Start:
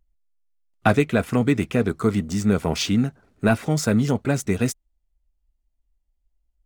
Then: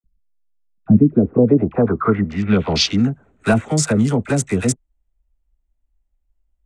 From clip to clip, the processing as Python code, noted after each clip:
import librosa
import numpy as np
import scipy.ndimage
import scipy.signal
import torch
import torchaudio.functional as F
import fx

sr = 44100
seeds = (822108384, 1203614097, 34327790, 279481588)

y = fx.wiener(x, sr, points=9)
y = fx.filter_sweep_lowpass(y, sr, from_hz=190.0, to_hz=8500.0, start_s=0.82, end_s=3.16, q=2.8)
y = fx.dispersion(y, sr, late='lows', ms=43.0, hz=740.0)
y = y * 10.0 ** (3.5 / 20.0)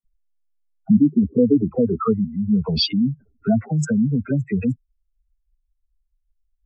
y = fx.spec_expand(x, sr, power=3.4)
y = y * 10.0 ** (-2.0 / 20.0)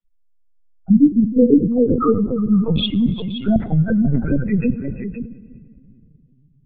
y = fx.echo_multitap(x, sr, ms=(348, 522), db=(-13.5, -9.5))
y = fx.room_shoebox(y, sr, seeds[0], volume_m3=4000.0, walls='mixed', distance_m=0.56)
y = fx.lpc_vocoder(y, sr, seeds[1], excitation='pitch_kept', order=16)
y = y * 10.0 ** (2.5 / 20.0)